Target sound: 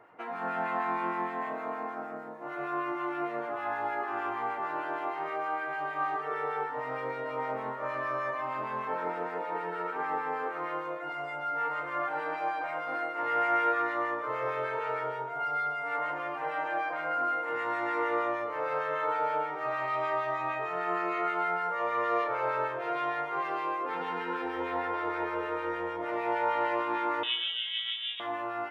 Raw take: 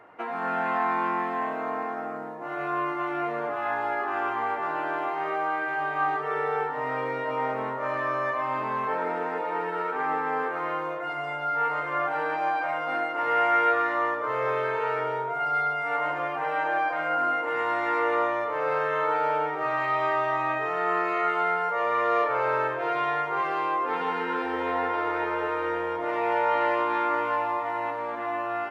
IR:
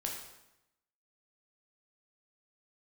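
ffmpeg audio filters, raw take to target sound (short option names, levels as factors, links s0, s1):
-filter_complex "[0:a]asettb=1/sr,asplit=3[s0][s1][s2];[s0]atrim=end=27.234[s3];[s1]atrim=start=27.23:end=28.2,asetpts=PTS-STARTPTS,afade=t=in:d=0.004:c=qsin,afade=t=out:st=0.966:d=0.004:c=qsin,lowpass=f=3400:t=q:w=0.5098,lowpass=f=3400:t=q:w=0.6013,lowpass=f=3400:t=q:w=0.9,lowpass=f=3400:t=q:w=2.563,afreqshift=-4000[s4];[s2]atrim=start=28.196[s5];[s3][s4]acrossfade=d=0.004:c1=hsin:c2=qsin[s6];[s6][s5]acrossfade=d=0.004:c1=qsin:c2=hsin,asplit=2[s7][s8];[1:a]atrim=start_sample=2205[s9];[s8][s9]afir=irnorm=-1:irlink=0,volume=0.398[s10];[s7][s10]amix=inputs=2:normalize=0,acrossover=split=1300[s11][s12];[s11]aeval=exprs='val(0)*(1-0.5/2+0.5/2*cos(2*PI*6.5*n/s))':c=same[s13];[s12]aeval=exprs='val(0)*(1-0.5/2-0.5/2*cos(2*PI*6.5*n/s))':c=same[s14];[s13][s14]amix=inputs=2:normalize=0,volume=0.531"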